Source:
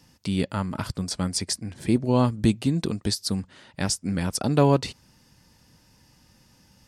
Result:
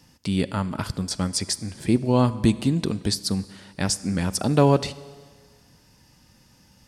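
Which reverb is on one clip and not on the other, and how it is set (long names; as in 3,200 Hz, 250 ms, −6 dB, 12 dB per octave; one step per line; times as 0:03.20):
four-comb reverb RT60 1.7 s, combs from 31 ms, DRR 16.5 dB
level +1.5 dB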